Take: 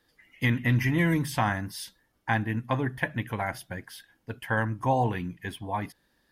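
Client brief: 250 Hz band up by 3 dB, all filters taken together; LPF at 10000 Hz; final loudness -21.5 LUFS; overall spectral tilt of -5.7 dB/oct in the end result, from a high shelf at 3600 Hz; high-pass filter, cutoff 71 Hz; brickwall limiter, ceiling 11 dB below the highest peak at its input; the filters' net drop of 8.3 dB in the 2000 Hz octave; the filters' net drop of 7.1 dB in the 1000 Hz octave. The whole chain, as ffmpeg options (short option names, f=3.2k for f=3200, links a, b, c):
-af "highpass=71,lowpass=10k,equalizer=f=250:t=o:g=4.5,equalizer=f=1k:t=o:g=-9,equalizer=f=2k:t=o:g=-8.5,highshelf=f=3.6k:g=5.5,volume=13dB,alimiter=limit=-10.5dB:level=0:latency=1"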